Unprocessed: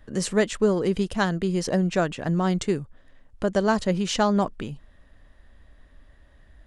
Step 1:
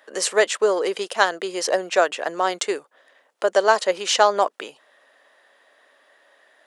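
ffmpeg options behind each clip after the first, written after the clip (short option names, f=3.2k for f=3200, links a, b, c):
-af "highpass=f=460:w=0.5412,highpass=f=460:w=1.3066,volume=7.5dB"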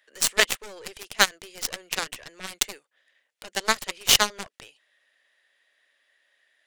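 -af "highshelf=f=1.5k:t=q:w=1.5:g=10.5,aeval=exprs='1.78*(cos(1*acos(clip(val(0)/1.78,-1,1)))-cos(1*PI/2))+0.0141*(cos(5*acos(clip(val(0)/1.78,-1,1)))-cos(5*PI/2))+0.0355*(cos(6*acos(clip(val(0)/1.78,-1,1)))-cos(6*PI/2))+0.316*(cos(7*acos(clip(val(0)/1.78,-1,1)))-cos(7*PI/2))+0.0562*(cos(8*acos(clip(val(0)/1.78,-1,1)))-cos(8*PI/2))':c=same,volume=-5dB"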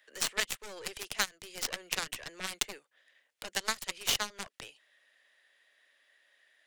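-filter_complex "[0:a]acrossover=split=220|850|4000[a][b][c][d];[a]acompressor=threshold=-47dB:ratio=4[e];[b]acompressor=threshold=-46dB:ratio=4[f];[c]acompressor=threshold=-33dB:ratio=4[g];[d]acompressor=threshold=-34dB:ratio=4[h];[e][f][g][h]amix=inputs=4:normalize=0"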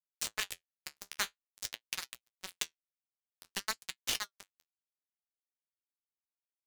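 -af "acrusher=bits=3:mix=0:aa=0.5,flanger=delay=7.8:depth=6:regen=-48:speed=0.5:shape=sinusoidal"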